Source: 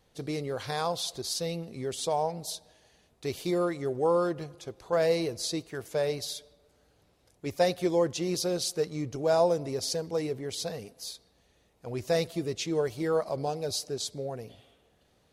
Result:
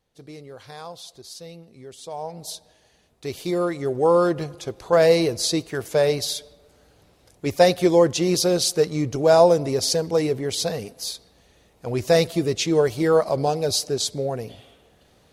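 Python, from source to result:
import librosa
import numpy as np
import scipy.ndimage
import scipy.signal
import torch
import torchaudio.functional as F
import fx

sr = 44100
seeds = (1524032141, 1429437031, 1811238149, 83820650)

y = fx.gain(x, sr, db=fx.line((2.04, -7.5), (2.47, 2.5), (3.27, 2.5), (4.39, 9.5)))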